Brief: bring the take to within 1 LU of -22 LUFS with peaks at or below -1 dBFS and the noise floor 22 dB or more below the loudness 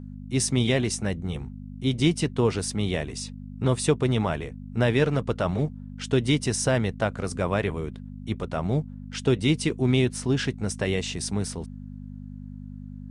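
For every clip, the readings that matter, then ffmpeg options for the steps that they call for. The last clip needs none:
hum 50 Hz; harmonics up to 250 Hz; hum level -36 dBFS; loudness -26.0 LUFS; peak -9.5 dBFS; loudness target -22.0 LUFS
-> -af "bandreject=f=50:t=h:w=4,bandreject=f=100:t=h:w=4,bandreject=f=150:t=h:w=4,bandreject=f=200:t=h:w=4,bandreject=f=250:t=h:w=4"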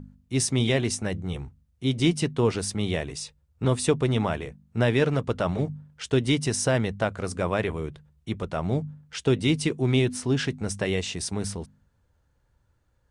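hum none; loudness -26.5 LUFS; peak -10.0 dBFS; loudness target -22.0 LUFS
-> -af "volume=4.5dB"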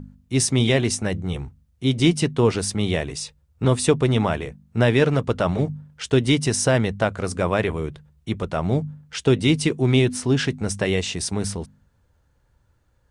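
loudness -22.0 LUFS; peak -5.5 dBFS; noise floor -63 dBFS

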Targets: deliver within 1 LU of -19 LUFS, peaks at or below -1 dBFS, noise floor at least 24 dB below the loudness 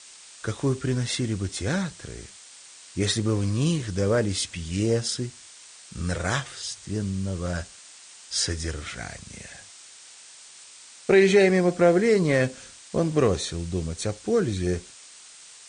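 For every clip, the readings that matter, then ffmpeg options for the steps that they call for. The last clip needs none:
noise floor -48 dBFS; noise floor target -49 dBFS; loudness -25.0 LUFS; peak -7.5 dBFS; loudness target -19.0 LUFS
-> -af "afftdn=nr=6:nf=-48"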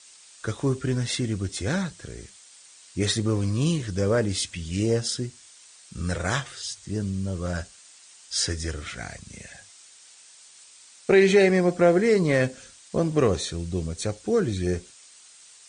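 noise floor -51 dBFS; loudness -25.0 LUFS; peak -7.5 dBFS; loudness target -19.0 LUFS
-> -af "volume=6dB"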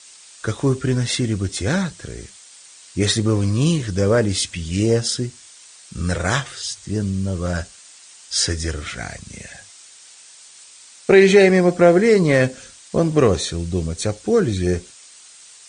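loudness -19.0 LUFS; peak -1.5 dBFS; noise floor -45 dBFS

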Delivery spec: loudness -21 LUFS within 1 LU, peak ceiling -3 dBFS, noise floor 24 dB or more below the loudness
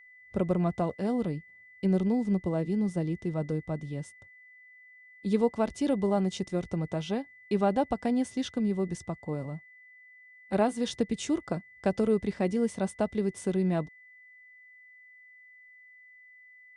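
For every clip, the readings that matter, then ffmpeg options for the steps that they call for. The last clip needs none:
steady tone 2000 Hz; tone level -52 dBFS; loudness -30.0 LUFS; peak -14.0 dBFS; loudness target -21.0 LUFS
-> -af "bandreject=f=2k:w=30"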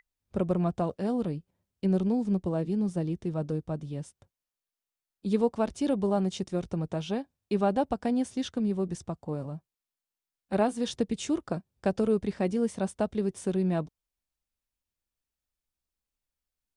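steady tone none; loudness -30.0 LUFS; peak -14.0 dBFS; loudness target -21.0 LUFS
-> -af "volume=9dB"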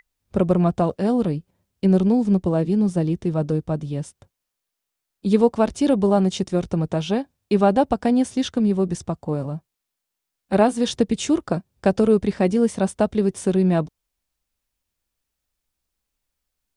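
loudness -21.0 LUFS; peak -5.0 dBFS; noise floor -82 dBFS

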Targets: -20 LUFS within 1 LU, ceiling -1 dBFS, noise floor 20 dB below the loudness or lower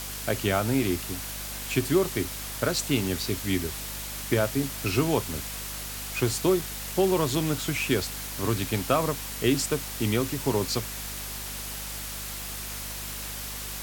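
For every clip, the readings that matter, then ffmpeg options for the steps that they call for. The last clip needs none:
hum 50 Hz; harmonics up to 250 Hz; hum level -40 dBFS; noise floor -36 dBFS; noise floor target -48 dBFS; loudness -28.0 LUFS; peak -10.5 dBFS; loudness target -20.0 LUFS
-> -af "bandreject=f=50:t=h:w=6,bandreject=f=100:t=h:w=6,bandreject=f=150:t=h:w=6,bandreject=f=200:t=h:w=6,bandreject=f=250:t=h:w=6"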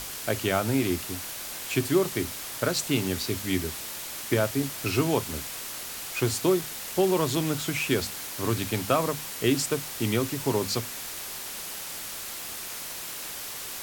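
hum none; noise floor -37 dBFS; noise floor target -48 dBFS
-> -af "afftdn=nr=11:nf=-37"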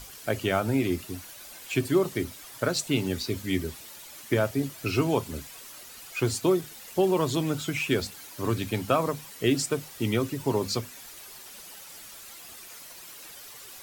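noise floor -46 dBFS; noise floor target -48 dBFS
-> -af "afftdn=nr=6:nf=-46"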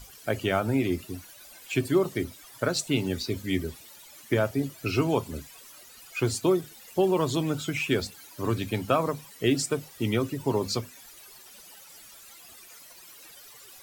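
noise floor -50 dBFS; loudness -28.0 LUFS; peak -11.5 dBFS; loudness target -20.0 LUFS
-> -af "volume=8dB"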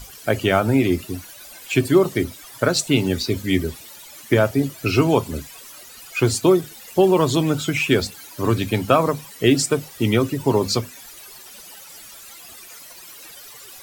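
loudness -20.0 LUFS; peak -3.5 dBFS; noise floor -42 dBFS

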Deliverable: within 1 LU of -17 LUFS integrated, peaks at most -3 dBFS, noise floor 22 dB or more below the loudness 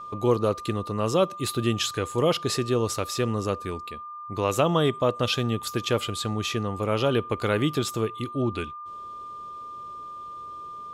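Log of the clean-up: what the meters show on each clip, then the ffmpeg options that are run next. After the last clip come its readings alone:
steady tone 1200 Hz; tone level -36 dBFS; loudness -26.0 LUFS; peak -7.5 dBFS; loudness target -17.0 LUFS
-> -af "bandreject=f=1.2k:w=30"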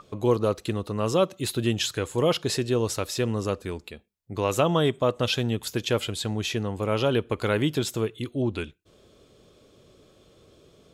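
steady tone none; loudness -26.5 LUFS; peak -8.0 dBFS; loudness target -17.0 LUFS
-> -af "volume=9.5dB,alimiter=limit=-3dB:level=0:latency=1"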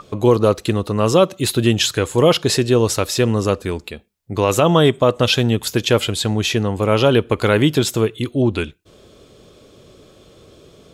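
loudness -17.0 LUFS; peak -3.0 dBFS; noise floor -49 dBFS

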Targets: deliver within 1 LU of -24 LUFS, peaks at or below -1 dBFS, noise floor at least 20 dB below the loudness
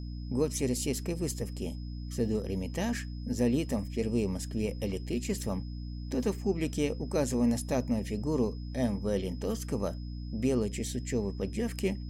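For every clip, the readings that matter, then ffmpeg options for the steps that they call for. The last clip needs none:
hum 60 Hz; harmonics up to 300 Hz; hum level -36 dBFS; steady tone 5100 Hz; tone level -56 dBFS; loudness -32.5 LUFS; peak -16.5 dBFS; loudness target -24.0 LUFS
-> -af "bandreject=f=60:t=h:w=6,bandreject=f=120:t=h:w=6,bandreject=f=180:t=h:w=6,bandreject=f=240:t=h:w=6,bandreject=f=300:t=h:w=6"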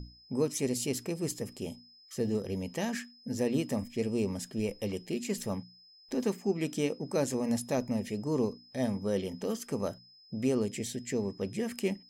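hum none; steady tone 5100 Hz; tone level -56 dBFS
-> -af "bandreject=f=5.1k:w=30"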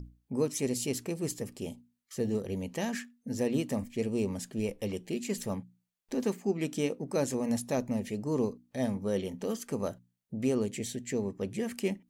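steady tone none; loudness -33.5 LUFS; peak -17.0 dBFS; loudness target -24.0 LUFS
-> -af "volume=9.5dB"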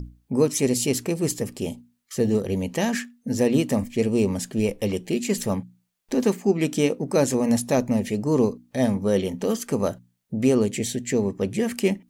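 loudness -24.0 LUFS; peak -7.5 dBFS; noise floor -70 dBFS

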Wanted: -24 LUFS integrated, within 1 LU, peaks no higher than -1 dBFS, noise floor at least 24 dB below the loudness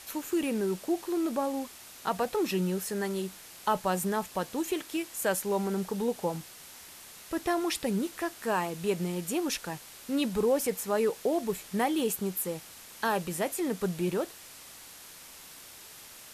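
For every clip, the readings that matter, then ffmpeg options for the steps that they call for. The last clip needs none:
noise floor -49 dBFS; noise floor target -55 dBFS; loudness -31.0 LUFS; peak -15.5 dBFS; loudness target -24.0 LUFS
-> -af "afftdn=nr=6:nf=-49"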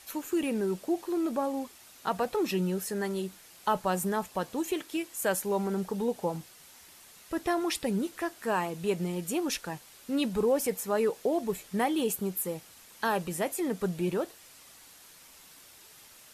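noise floor -54 dBFS; noise floor target -55 dBFS
-> -af "afftdn=nr=6:nf=-54"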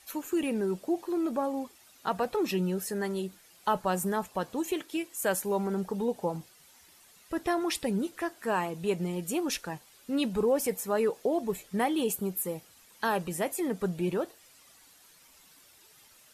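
noise floor -59 dBFS; loudness -31.0 LUFS; peak -15.5 dBFS; loudness target -24.0 LUFS
-> -af "volume=7dB"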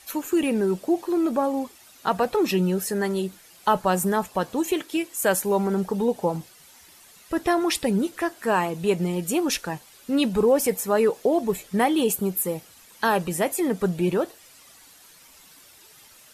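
loudness -24.0 LUFS; peak -8.5 dBFS; noise floor -52 dBFS

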